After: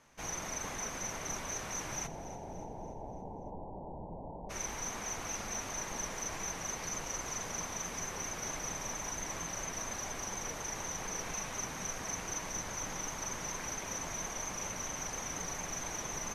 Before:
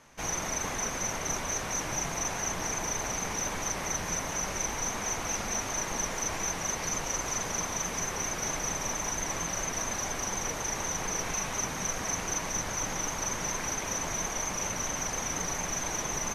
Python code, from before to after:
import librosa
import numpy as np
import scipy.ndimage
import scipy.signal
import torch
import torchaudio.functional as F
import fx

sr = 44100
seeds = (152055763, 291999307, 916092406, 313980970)

y = fx.steep_lowpass(x, sr, hz=940.0, slope=96, at=(2.06, 4.49), fade=0.02)
y = fx.echo_feedback(y, sr, ms=288, feedback_pct=52, wet_db=-15)
y = y * librosa.db_to_amplitude(-7.0)